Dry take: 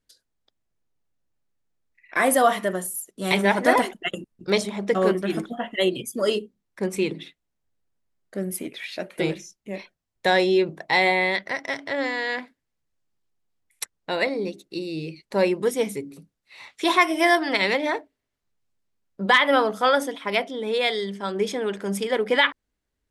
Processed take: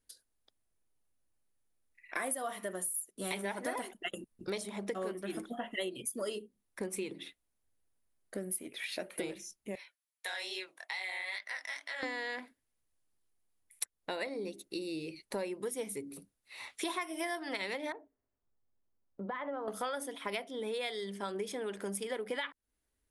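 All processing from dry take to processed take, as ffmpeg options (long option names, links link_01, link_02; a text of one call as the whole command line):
ffmpeg -i in.wav -filter_complex "[0:a]asettb=1/sr,asplit=3[link_01][link_02][link_03];[link_01]atrim=end=9.754[link_04];[link_02]atrim=start=9.75:end=12.03,asetpts=PTS-STARTPTS,afade=type=in:duration=0.004:curve=qsin,afade=type=out:start_time=2.276:duration=0.004:curve=qsin,highpass=1300,flanger=delay=15.5:depth=7.9:speed=2.3,acompressor=threshold=-31dB:ratio=4:attack=3.2:release=140:knee=1:detection=peak[link_05];[link_03]atrim=start=12.026[link_06];[link_04][link_05]acrossfade=duration=0.004:curve1=hsin:curve2=qsin[link_07];[link_07][link_06]acrossfade=duration=0.004:curve1=qsin:curve2=hsin,asettb=1/sr,asplit=3[link_08][link_09][link_10];[link_08]atrim=end=17.924[link_11];[link_09]atrim=start=17.92:end=19.68,asetpts=PTS-STARTPTS,afade=type=in:duration=0.004:curve=qsin,afade=type=out:start_time=1.756:duration=0.004:curve=qsin,lowpass=1100,acompressor=threshold=-36dB:ratio=2:attack=3.2:release=140:knee=1:detection=peak[link_12];[link_10]atrim=start=19.676[link_13];[link_11][link_12]acrossfade=duration=0.004:curve1=hsin:curve2=qsin[link_14];[link_14][link_13]acrossfade=duration=0.004:curve1=qsin:curve2=hsin,equalizer=frequency=10000:width=2.6:gain=13.5,acompressor=threshold=-32dB:ratio=6,equalizer=frequency=160:width=4.2:gain=-9.5,volume=-3dB" out.wav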